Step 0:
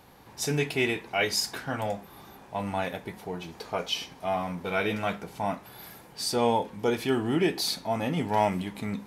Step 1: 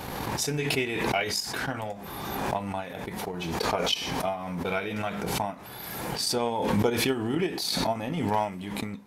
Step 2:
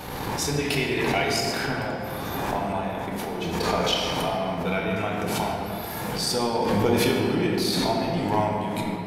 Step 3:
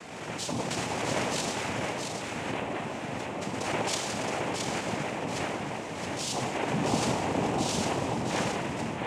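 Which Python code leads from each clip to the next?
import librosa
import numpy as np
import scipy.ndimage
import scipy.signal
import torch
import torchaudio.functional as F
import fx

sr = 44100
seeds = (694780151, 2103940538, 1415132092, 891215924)

y1 = fx.transient(x, sr, attack_db=12, sustain_db=0)
y1 = fx.pre_swell(y1, sr, db_per_s=26.0)
y1 = y1 * librosa.db_to_amplitude(-8.0)
y2 = fx.room_shoebox(y1, sr, seeds[0], volume_m3=150.0, walls='hard', distance_m=0.48)
y3 = fx.noise_vocoder(y2, sr, seeds[1], bands=4)
y3 = y3 + 10.0 ** (-4.5 / 20.0) * np.pad(y3, (int(670 * sr / 1000.0), 0))[:len(y3)]
y3 = y3 * librosa.db_to_amplitude(-6.5)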